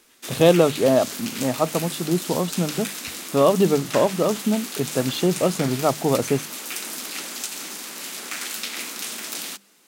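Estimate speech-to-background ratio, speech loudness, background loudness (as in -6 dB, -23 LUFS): 8.5 dB, -22.0 LUFS, -30.5 LUFS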